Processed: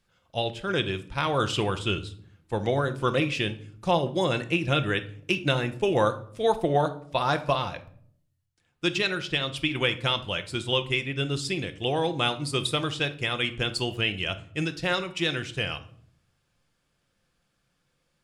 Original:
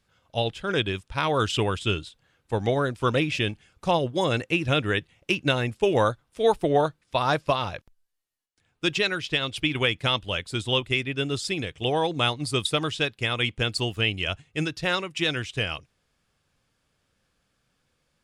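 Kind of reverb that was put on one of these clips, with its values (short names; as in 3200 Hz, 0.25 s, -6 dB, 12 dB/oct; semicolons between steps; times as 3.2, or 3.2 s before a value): shoebox room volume 840 m³, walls furnished, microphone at 0.85 m; gain -2 dB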